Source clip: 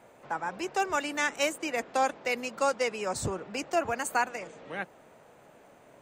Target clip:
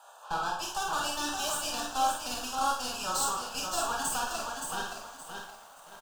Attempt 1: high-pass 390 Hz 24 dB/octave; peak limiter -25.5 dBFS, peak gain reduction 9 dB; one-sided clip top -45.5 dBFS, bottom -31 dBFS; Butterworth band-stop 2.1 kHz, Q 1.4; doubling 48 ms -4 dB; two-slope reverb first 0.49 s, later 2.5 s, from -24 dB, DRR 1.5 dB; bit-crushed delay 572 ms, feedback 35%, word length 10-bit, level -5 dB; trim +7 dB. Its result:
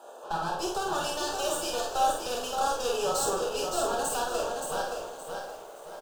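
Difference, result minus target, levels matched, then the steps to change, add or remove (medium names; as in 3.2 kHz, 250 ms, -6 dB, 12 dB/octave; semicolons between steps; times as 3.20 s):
500 Hz band +9.0 dB
change: high-pass 870 Hz 24 dB/octave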